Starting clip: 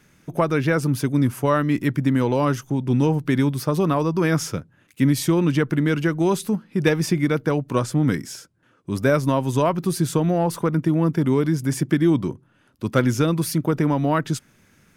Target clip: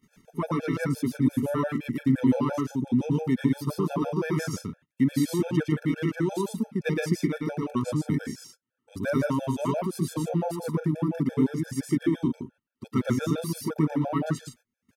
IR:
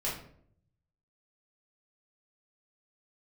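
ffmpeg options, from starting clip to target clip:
-af "equalizer=f=240:w=4:g=9.5,aecho=1:1:113.7|151.6:0.891|0.398,acompressor=mode=upward:threshold=-28dB:ratio=2.5,agate=range=-28dB:threshold=-38dB:ratio=16:detection=peak,afftfilt=real='re*gt(sin(2*PI*5.8*pts/sr)*(1-2*mod(floor(b*sr/1024/450),2)),0)':imag='im*gt(sin(2*PI*5.8*pts/sr)*(1-2*mod(floor(b*sr/1024/450),2)),0)':win_size=1024:overlap=0.75,volume=-8dB"

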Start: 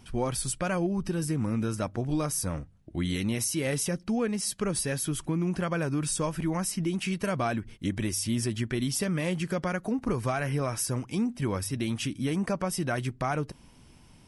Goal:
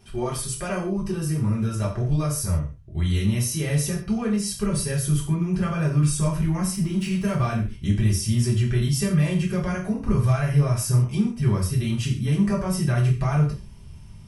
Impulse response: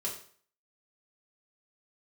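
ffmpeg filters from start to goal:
-filter_complex "[0:a]asettb=1/sr,asplit=3[a][b][c];[a]atrim=end=6.734[d];[b]atrim=start=6.73:end=7.47,asetpts=PTS-STARTPTS,afade=t=in:d=0.004:c=qsin,afade=t=out:st=0.736:d=0.004:c=qsin,aeval=exprs='sgn(val(0))*max(abs(val(0))-0.00282,0)':c=same[e];[c]atrim=start=7.466[f];[d][e]acrossfade=d=0.004:c1=hsin:c2=qsin[g];[g][f]acrossfade=d=0.004:c1=qsin:c2=hsin,asubboost=boost=7:cutoff=130[h];[1:a]atrim=start_sample=2205,afade=t=out:st=0.21:d=0.01,atrim=end_sample=9702[i];[h][i]afir=irnorm=-1:irlink=0"

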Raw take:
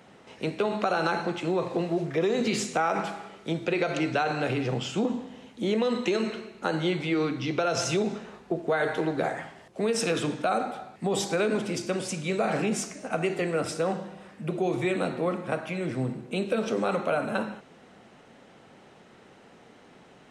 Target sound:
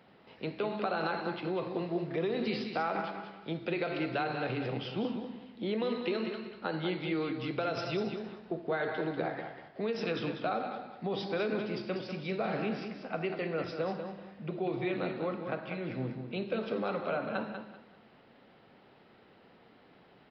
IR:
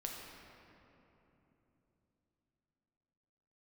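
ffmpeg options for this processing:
-filter_complex "[0:a]asplit=2[a][b];[b]aecho=0:1:193|386|579:0.398|0.0995|0.0249[c];[a][c]amix=inputs=2:normalize=0,aresample=11025,aresample=44100,volume=-7dB"

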